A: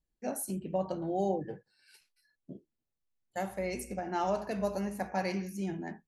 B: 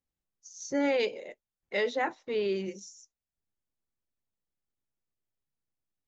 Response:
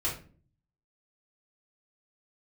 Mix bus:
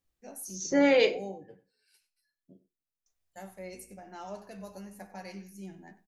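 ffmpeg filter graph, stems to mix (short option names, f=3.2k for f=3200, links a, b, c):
-filter_complex "[0:a]highshelf=f=4.7k:g=8.5,flanger=delay=9.5:depth=1.4:regen=43:speed=0.95:shape=triangular,volume=-7.5dB,asplit=2[a][b];[b]volume=-17dB[c];[1:a]volume=3dB,asplit=3[d][e][f];[d]atrim=end=1.16,asetpts=PTS-STARTPTS,afade=t=out:st=1.156:d=0.004:c=hsin[g];[e]atrim=start=1.16:end=3.06,asetpts=PTS-STARTPTS,volume=0[h];[f]atrim=start=3.06,asetpts=PTS-STARTPTS,afade=t=in:d=0.004:c=hsin[i];[g][h][i]concat=n=3:v=0:a=1,asplit=2[j][k];[k]volume=-9.5dB[l];[2:a]atrim=start_sample=2205[m];[l][m]afir=irnorm=-1:irlink=0[n];[c]aecho=0:1:95:1[o];[a][j][n][o]amix=inputs=4:normalize=0"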